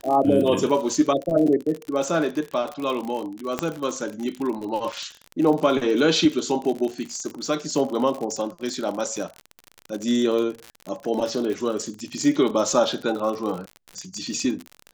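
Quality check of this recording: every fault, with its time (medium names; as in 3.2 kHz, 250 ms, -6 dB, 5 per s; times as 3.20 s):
crackle 55 per s -27 dBFS
3.59 s: pop -9 dBFS
4.92–4.93 s: dropout 5.6 ms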